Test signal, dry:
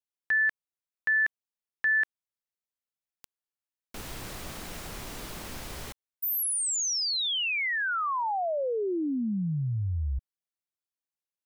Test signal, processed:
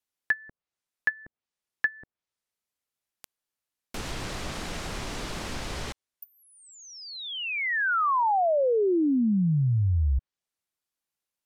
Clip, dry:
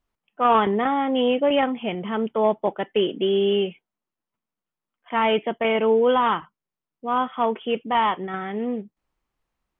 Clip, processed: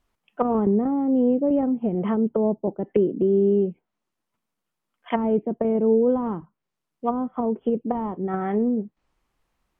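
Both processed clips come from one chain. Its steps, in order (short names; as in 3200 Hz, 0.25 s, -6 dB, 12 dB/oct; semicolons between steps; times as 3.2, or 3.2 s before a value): treble ducked by the level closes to 320 Hz, closed at -22 dBFS; gain +6 dB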